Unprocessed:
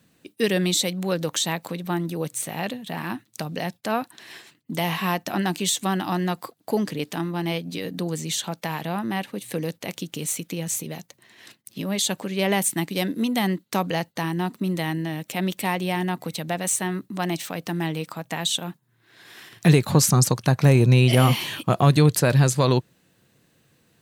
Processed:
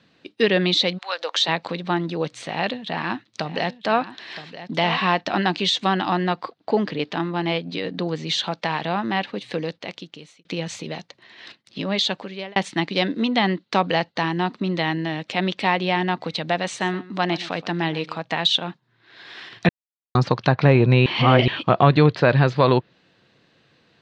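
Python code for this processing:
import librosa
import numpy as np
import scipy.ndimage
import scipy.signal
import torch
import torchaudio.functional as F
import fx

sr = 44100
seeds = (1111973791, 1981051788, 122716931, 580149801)

y = fx.highpass(x, sr, hz=fx.line((0.97, 1100.0), (1.47, 310.0)), slope=24, at=(0.97, 1.47), fade=0.02)
y = fx.echo_single(y, sr, ms=969, db=-13.0, at=(2.46, 5.21))
y = fx.high_shelf(y, sr, hz=5500.0, db=-8.5, at=(6.08, 8.27))
y = fx.echo_single(y, sr, ms=124, db=-17.5, at=(16.68, 18.22))
y = fx.edit(y, sr, fx.fade_out_span(start_s=9.41, length_s=1.04),
    fx.fade_out_span(start_s=11.95, length_s=0.61),
    fx.silence(start_s=19.69, length_s=0.46),
    fx.reverse_span(start_s=21.06, length_s=0.42), tone=tone)
y = scipy.signal.sosfilt(scipy.signal.cheby1(3, 1.0, 4400.0, 'lowpass', fs=sr, output='sos'), y)
y = fx.env_lowpass_down(y, sr, base_hz=2700.0, full_db=-16.0)
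y = fx.low_shelf(y, sr, hz=290.0, db=-9.5)
y = F.gain(torch.from_numpy(y), 7.0).numpy()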